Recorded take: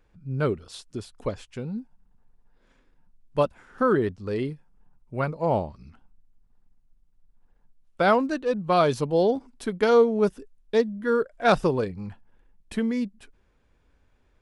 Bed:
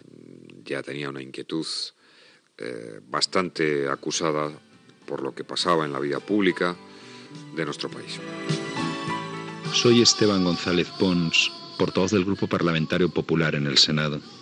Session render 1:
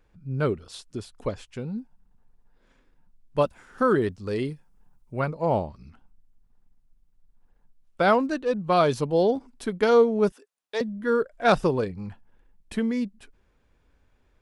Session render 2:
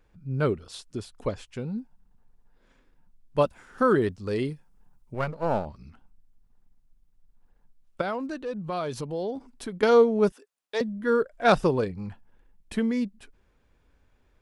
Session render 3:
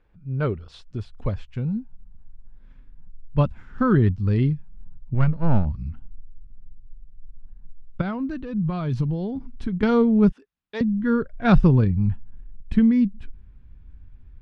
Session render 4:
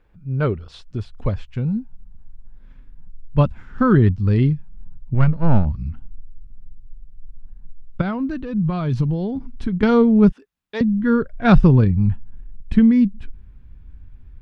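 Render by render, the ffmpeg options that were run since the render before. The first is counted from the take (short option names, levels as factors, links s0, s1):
-filter_complex "[0:a]asettb=1/sr,asplit=3[s0][s1][s2];[s0]atrim=end=3.454[s3];[s1]atrim=start=3.45:end=5.14,asetpts=PTS-STARTPTS,afade=t=in:d=0.004:c=qsin,afade=t=out:st=1.686:d=0.004:c=qsin,highshelf=f=4600:g=8.5[s4];[s2]atrim=start=5.136[s5];[s3][s4]acrossfade=d=0.004:c1=hsin:c2=qsin[s6];[s6][s5]acrossfade=d=0.004:c1=qsin:c2=hsin,asettb=1/sr,asplit=3[s7][s8][s9];[s7]atrim=end=10.324[s10];[s8]atrim=start=10.32:end=10.81,asetpts=PTS-STARTPTS,afade=t=in:d=0.004:c=qsin,afade=t=out:st=0.486:d=0.004:c=qsin,highpass=690[s11];[s9]atrim=start=10.806[s12];[s10][s11]acrossfade=d=0.004:c1=hsin:c2=qsin[s13];[s13][s12]acrossfade=d=0.004:c1=qsin:c2=hsin"
-filter_complex "[0:a]asettb=1/sr,asplit=3[s0][s1][s2];[s0]atrim=end=5.144[s3];[s1]atrim=start=5.14:end=5.66,asetpts=PTS-STARTPTS,afade=t=in:d=0.004:c=qsin,afade=t=out:st=0.516:d=0.004:c=qsin,aeval=exprs='if(lt(val(0),0),0.447*val(0),val(0))':c=same[s4];[s2]atrim=start=5.656[s5];[s3][s4]acrossfade=d=0.004:c1=hsin:c2=qsin[s6];[s6][s5]acrossfade=d=0.004:c1=qsin:c2=hsin,asettb=1/sr,asplit=3[s7][s8][s9];[s7]atrim=end=8.014[s10];[s8]atrim=start=8.01:end=9.83,asetpts=PTS-STARTPTS,afade=t=in:d=0.004:c=qsin,afade=t=out:st=1.816:d=0.004:c=qsin,acompressor=threshold=0.0251:ratio=2.5:attack=3.2:release=140:knee=1:detection=peak[s11];[s9]atrim=start=9.826[s12];[s10][s11]acrossfade=d=0.004:c1=hsin:c2=qsin[s13];[s13][s12]acrossfade=d=0.004:c1=qsin:c2=hsin"
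-af "lowpass=3300,asubboost=boost=12:cutoff=150"
-af "volume=1.58,alimiter=limit=0.708:level=0:latency=1"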